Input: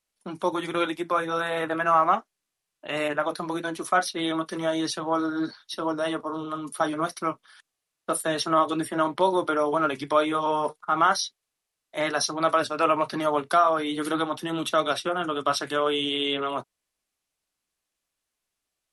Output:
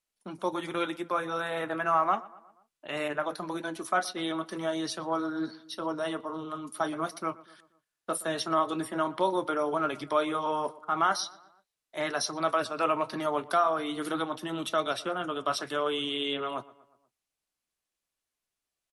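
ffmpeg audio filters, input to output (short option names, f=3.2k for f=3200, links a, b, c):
-filter_complex "[0:a]asplit=2[a][b];[b]adelay=120,lowpass=f=2.6k:p=1,volume=-20dB,asplit=2[c][d];[d]adelay=120,lowpass=f=2.6k:p=1,volume=0.54,asplit=2[e][f];[f]adelay=120,lowpass=f=2.6k:p=1,volume=0.54,asplit=2[g][h];[h]adelay=120,lowpass=f=2.6k:p=1,volume=0.54[i];[a][c][e][g][i]amix=inputs=5:normalize=0,volume=-5dB"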